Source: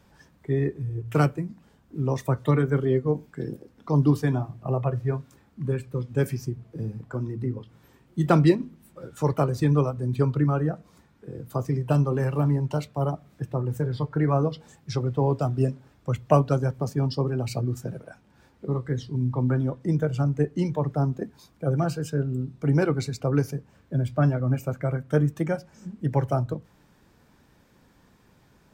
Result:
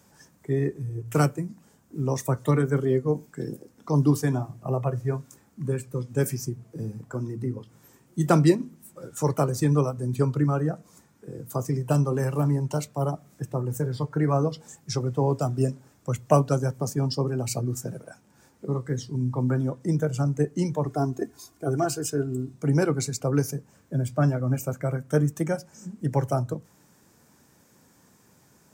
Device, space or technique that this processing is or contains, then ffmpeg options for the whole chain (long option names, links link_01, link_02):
budget condenser microphone: -filter_complex "[0:a]highpass=100,highshelf=frequency=5000:width_type=q:width=1.5:gain=9,asettb=1/sr,asplit=3[link_01][link_02][link_03];[link_01]atrim=end=20.864[link_04];[link_02]atrim=start=20.86:end=22.54,asetpts=PTS-STARTPTS,afade=type=in:duration=0.004:curve=qsin,afade=type=out:start_time=1.676:duration=0.004:curve=qsin,aecho=1:1:2.8:0.73,atrim=end_sample=74088[link_05];[link_03]atrim=start=22.536[link_06];[link_04][link_05]acrossfade=duration=0.004:curve1=hsin:curve2=qsin[link_07];[link_07][link_06]acrossfade=duration=0.004:curve1=qsin:curve2=hsin"